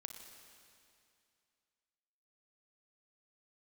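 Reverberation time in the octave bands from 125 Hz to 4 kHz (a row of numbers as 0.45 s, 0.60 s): 2.5 s, 2.6 s, 2.5 s, 2.5 s, 2.5 s, 2.4 s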